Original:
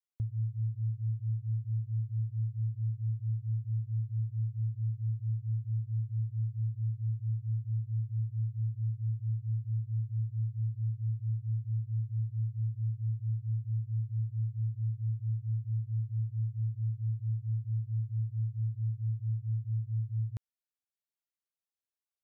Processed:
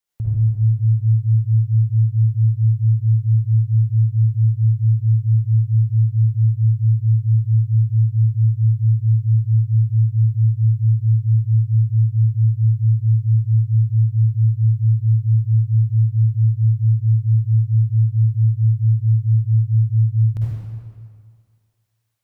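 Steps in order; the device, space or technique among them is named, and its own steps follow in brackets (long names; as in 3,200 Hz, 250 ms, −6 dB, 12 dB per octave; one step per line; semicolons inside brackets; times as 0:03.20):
stairwell (convolution reverb RT60 2.0 s, pre-delay 46 ms, DRR −7.5 dB)
level +8.5 dB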